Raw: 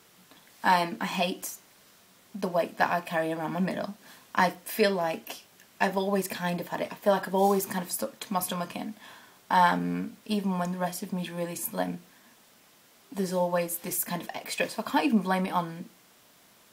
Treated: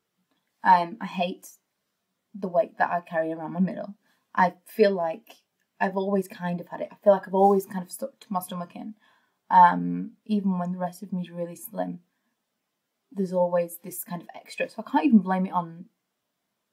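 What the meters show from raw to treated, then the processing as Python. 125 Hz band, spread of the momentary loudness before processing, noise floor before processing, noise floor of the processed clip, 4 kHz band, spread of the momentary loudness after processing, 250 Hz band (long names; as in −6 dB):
+2.5 dB, 14 LU, −59 dBFS, −80 dBFS, −7.0 dB, 16 LU, +3.5 dB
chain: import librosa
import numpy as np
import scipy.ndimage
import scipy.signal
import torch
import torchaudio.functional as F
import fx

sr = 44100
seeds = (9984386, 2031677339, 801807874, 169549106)

y = fx.spectral_expand(x, sr, expansion=1.5)
y = F.gain(torch.from_numpy(y), 3.0).numpy()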